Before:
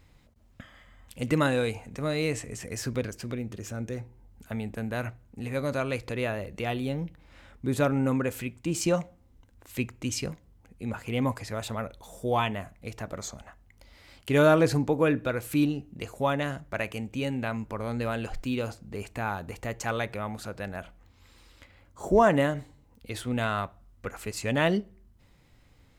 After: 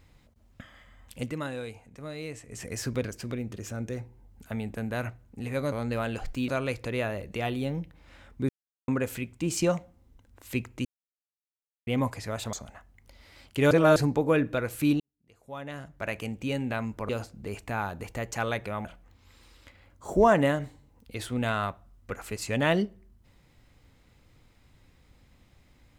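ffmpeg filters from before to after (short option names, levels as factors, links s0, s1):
-filter_complex "[0:a]asplit=15[s0][s1][s2][s3][s4][s5][s6][s7][s8][s9][s10][s11][s12][s13][s14];[s0]atrim=end=1.32,asetpts=PTS-STARTPTS,afade=t=out:st=1.2:d=0.12:silence=0.316228[s15];[s1]atrim=start=1.32:end=2.48,asetpts=PTS-STARTPTS,volume=0.316[s16];[s2]atrim=start=2.48:end=5.722,asetpts=PTS-STARTPTS,afade=t=in:d=0.12:silence=0.316228[s17];[s3]atrim=start=17.808:end=18.572[s18];[s4]atrim=start=5.718:end=7.73,asetpts=PTS-STARTPTS,afade=t=out:st=2.008:d=0.004:c=hsin[s19];[s5]atrim=start=7.73:end=8.12,asetpts=PTS-STARTPTS,volume=0[s20];[s6]atrim=start=8.12:end=10.09,asetpts=PTS-STARTPTS,afade=t=in:d=0.004:c=hsin,afade=t=out:st=1.966:d=0.004:c=hsin[s21];[s7]atrim=start=10.09:end=11.11,asetpts=PTS-STARTPTS,volume=0[s22];[s8]atrim=start=11.11:end=11.772,asetpts=PTS-STARTPTS,afade=t=in:d=0.004:c=hsin[s23];[s9]atrim=start=13.248:end=14.432[s24];[s10]atrim=start=14.428:end=14.682,asetpts=PTS-STARTPTS,areverse[s25];[s11]atrim=start=14.678:end=15.72,asetpts=PTS-STARTPTS,afade=t=out:st=1.038:d=0.004:c=hsin[s26];[s12]atrim=start=15.72:end=17.812,asetpts=PTS-STARTPTS,afade=t=in:d=1.2:c=qua[s27];[s13]atrim=start=18.568:end=20.332[s28];[s14]atrim=start=20.798[s29];[s15][s16][s17]concat=n=3:v=0:a=1[s30];[s30][s18]acrossfade=d=0.004:c1=hsin:c2=hsin[s31];[s19][s20][s21][s22][s23]concat=n=5:v=0:a=1[s32];[s31][s32]acrossfade=d=0.004:c1=hsin:c2=hsin[s33];[s33][s24]acrossfade=d=0.004:c1=hsin:c2=hsin[s34];[s34][s25]acrossfade=d=0.004:c1=hsin:c2=hsin[s35];[s26][s27]concat=n=2:v=0:a=1[s36];[s35][s36]acrossfade=d=0.004:c1=hsin:c2=hsin[s37];[s37][s28]acrossfade=d=0.004:c1=hsin:c2=hsin[s38];[s38][s29]acrossfade=d=0.004:c1=hsin:c2=hsin"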